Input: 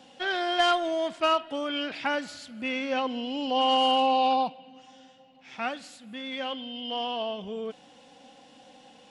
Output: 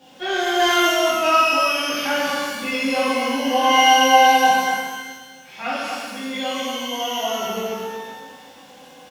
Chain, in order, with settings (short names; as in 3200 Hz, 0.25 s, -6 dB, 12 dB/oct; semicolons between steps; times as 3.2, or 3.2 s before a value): bit-crush 11-bit; echo 0.231 s -6 dB; shimmer reverb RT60 1.2 s, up +12 st, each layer -8 dB, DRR -10 dB; gain -3.5 dB